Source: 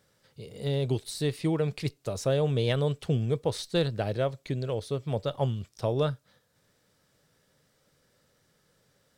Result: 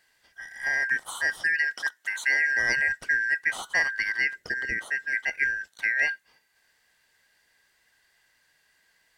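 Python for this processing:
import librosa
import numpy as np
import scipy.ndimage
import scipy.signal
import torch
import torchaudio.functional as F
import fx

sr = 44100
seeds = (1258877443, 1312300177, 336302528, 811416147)

y = fx.band_shuffle(x, sr, order='3142')
y = fx.highpass(y, sr, hz=280.0, slope=12, at=(1.73, 2.51))
y = fx.low_shelf_res(y, sr, hz=610.0, db=10.5, q=1.5, at=(4.35, 4.79))
y = y * librosa.db_to_amplitude(1.5)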